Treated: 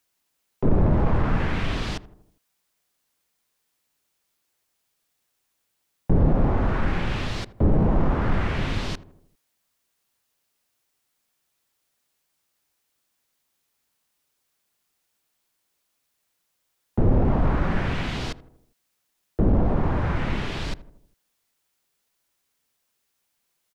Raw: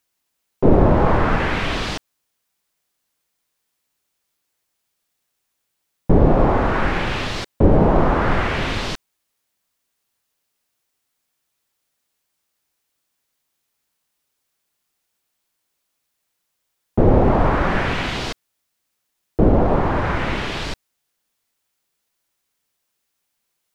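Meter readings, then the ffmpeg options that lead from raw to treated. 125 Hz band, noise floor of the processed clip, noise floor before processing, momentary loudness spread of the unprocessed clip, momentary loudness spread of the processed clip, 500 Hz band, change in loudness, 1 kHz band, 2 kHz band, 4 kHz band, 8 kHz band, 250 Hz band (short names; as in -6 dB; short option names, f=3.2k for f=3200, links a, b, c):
-3.0 dB, -75 dBFS, -75 dBFS, 13 LU, 12 LU, -9.5 dB, -6.0 dB, -10.0 dB, -8.5 dB, -7.5 dB, n/a, -5.5 dB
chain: -filter_complex "[0:a]asoftclip=type=tanh:threshold=-10.5dB,asplit=2[a][b];[b]adelay=80,lowpass=f=900:p=1,volume=-16dB,asplit=2[c][d];[d]adelay=80,lowpass=f=900:p=1,volume=0.54,asplit=2[e][f];[f]adelay=80,lowpass=f=900:p=1,volume=0.54,asplit=2[g][h];[h]adelay=80,lowpass=f=900:p=1,volume=0.54,asplit=2[i][j];[j]adelay=80,lowpass=f=900:p=1,volume=0.54[k];[a][c][e][g][i][k]amix=inputs=6:normalize=0,acrossover=split=250[l][m];[m]acompressor=threshold=-43dB:ratio=1.5[n];[l][n]amix=inputs=2:normalize=0"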